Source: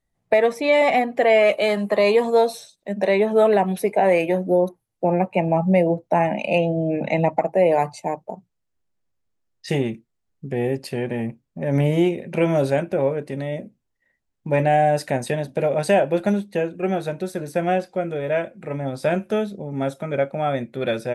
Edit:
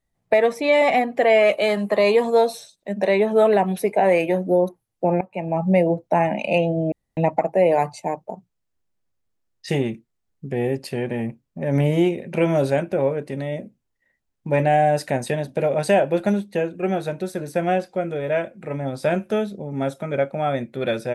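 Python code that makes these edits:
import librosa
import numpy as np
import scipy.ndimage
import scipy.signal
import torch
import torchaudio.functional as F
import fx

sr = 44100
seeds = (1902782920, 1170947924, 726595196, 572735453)

y = fx.edit(x, sr, fx.fade_in_from(start_s=5.21, length_s=0.53, floor_db=-19.0),
    fx.room_tone_fill(start_s=6.92, length_s=0.25), tone=tone)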